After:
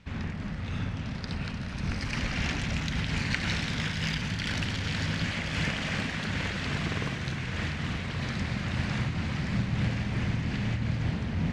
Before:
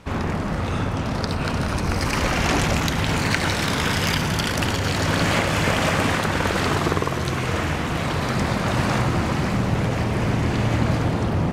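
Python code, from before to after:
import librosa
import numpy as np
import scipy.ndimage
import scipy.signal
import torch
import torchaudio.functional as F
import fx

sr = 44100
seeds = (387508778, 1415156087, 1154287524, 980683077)

p1 = scipy.signal.sosfilt(scipy.signal.butter(2, 5200.0, 'lowpass', fs=sr, output='sos'), x)
p2 = fx.band_shelf(p1, sr, hz=630.0, db=-9.5, octaves=2.4)
p3 = p2 + fx.echo_single(p2, sr, ms=1074, db=-6.5, dry=0)
p4 = fx.am_noise(p3, sr, seeds[0], hz=5.7, depth_pct=55)
y = F.gain(torch.from_numpy(p4), -5.0).numpy()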